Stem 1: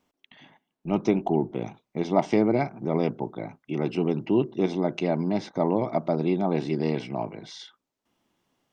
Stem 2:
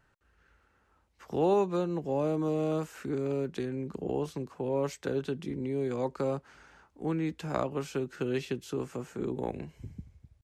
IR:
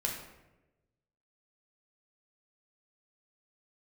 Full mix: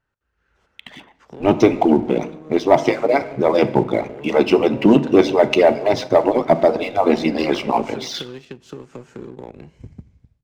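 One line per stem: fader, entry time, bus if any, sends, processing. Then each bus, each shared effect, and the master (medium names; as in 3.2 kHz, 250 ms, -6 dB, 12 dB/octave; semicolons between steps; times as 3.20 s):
+0.5 dB, 0.55 s, send -11.5 dB, harmonic-percussive separation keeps percussive
-8.0 dB, 0.00 s, send -17 dB, compression 8:1, threshold -38 dBFS, peak gain reduction 16.5 dB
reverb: on, RT60 1.0 s, pre-delay 9 ms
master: low-pass 7.1 kHz 12 dB/octave; level rider gain up to 11.5 dB; waveshaping leveller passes 1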